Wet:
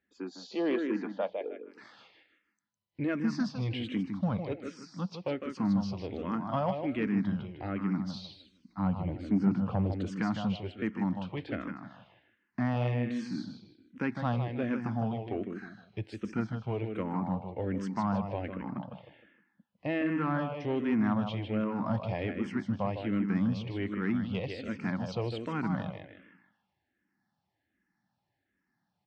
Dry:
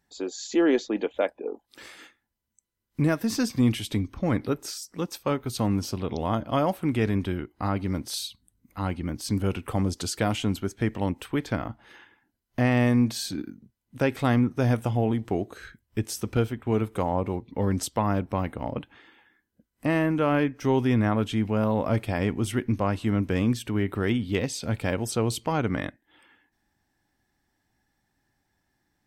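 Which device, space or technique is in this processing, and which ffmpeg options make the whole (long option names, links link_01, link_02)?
barber-pole phaser into a guitar amplifier: -filter_complex "[0:a]asettb=1/sr,asplit=3[link_01][link_02][link_03];[link_01]atrim=end=8.114[link_04];[link_02]atrim=start=8.11:end=10.07,asetpts=PTS-STARTPTS,afade=type=in:duration=0.004:curve=qsin,afade=type=out:start_time=1.956:duration=0.004:curve=qsin,tiltshelf=frequency=1300:gain=5.5[link_05];[link_03]atrim=start=10.066[link_06];[link_04][link_05]acrossfade=duration=0.004:curve1=hsin:curve2=qsin[link_07];[link_07][link_06]acrossfade=duration=0.004:curve1=qsin:curve2=hsin,aecho=1:1:155|310|465|620:0.447|0.152|0.0516|0.0176,asplit=2[link_08][link_09];[link_09]afreqshift=-1.3[link_10];[link_08][link_10]amix=inputs=2:normalize=1,asoftclip=type=tanh:threshold=-16.5dB,highpass=110,equalizer=frequency=190:width_type=q:width=4:gain=6,equalizer=frequency=410:width_type=q:width=4:gain=-4,equalizer=frequency=3600:width_type=q:width=4:gain=-4,lowpass=frequency=4400:width=0.5412,lowpass=frequency=4400:width=1.3066,volume=-3.5dB"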